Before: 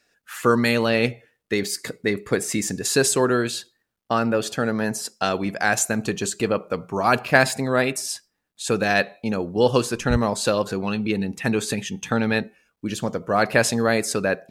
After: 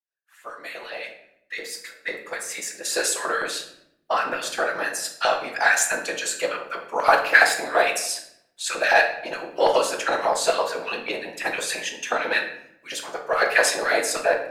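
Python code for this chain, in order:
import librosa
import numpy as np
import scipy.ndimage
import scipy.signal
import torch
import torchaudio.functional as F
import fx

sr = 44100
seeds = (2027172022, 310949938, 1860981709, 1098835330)

p1 = fx.fade_in_head(x, sr, length_s=4.57)
p2 = 10.0 ** (-14.5 / 20.0) * np.tanh(p1 / 10.0 ** (-14.5 / 20.0))
p3 = p1 + (p2 * librosa.db_to_amplitude(-6.5))
p4 = fx.whisperise(p3, sr, seeds[0])
p5 = fx.filter_lfo_highpass(p4, sr, shape='square', hz=6.0, low_hz=680.0, high_hz=1700.0, q=1.7)
p6 = fx.room_shoebox(p5, sr, seeds[1], volume_m3=170.0, walls='mixed', distance_m=0.7)
y = p6 * librosa.db_to_amplitude(-3.5)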